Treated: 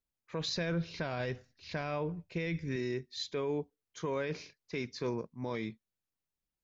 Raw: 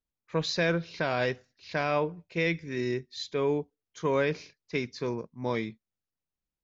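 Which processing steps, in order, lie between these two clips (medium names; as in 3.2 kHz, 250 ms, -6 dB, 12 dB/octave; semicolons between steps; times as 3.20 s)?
0.48–2.76 s: bass shelf 150 Hz +11.5 dB; peak limiter -24.5 dBFS, peak gain reduction 10.5 dB; trim -1.5 dB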